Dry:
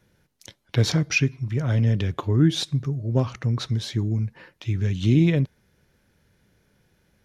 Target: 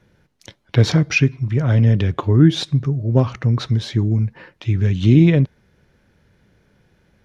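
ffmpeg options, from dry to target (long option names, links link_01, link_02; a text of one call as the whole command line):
ffmpeg -i in.wav -af "aemphasis=mode=reproduction:type=50kf,volume=6.5dB" out.wav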